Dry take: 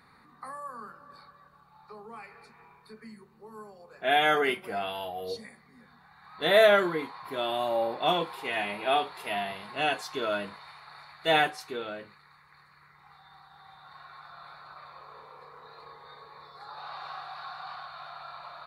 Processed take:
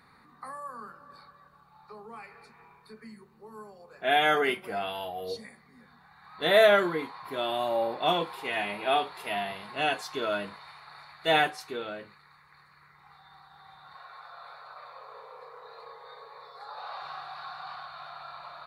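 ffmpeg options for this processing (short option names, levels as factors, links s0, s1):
-filter_complex "[0:a]asettb=1/sr,asplit=3[s0][s1][s2];[s0]atrim=end=13.954[s3];[s1]atrim=start=13.95:end=17.02,asetpts=PTS-STARTPTS,afade=t=in:d=0.004:c=qsin,afade=t=out:st=3.066:d=0.004:c=qsin,lowshelf=f=380:t=q:w=3:g=-8[s4];[s2]atrim=start=17.016[s5];[s3][s4]acrossfade=d=0.004:c1=hsin:c2=qsin[s6];[s6][s5]acrossfade=d=0.004:c1=qsin:c2=hsin"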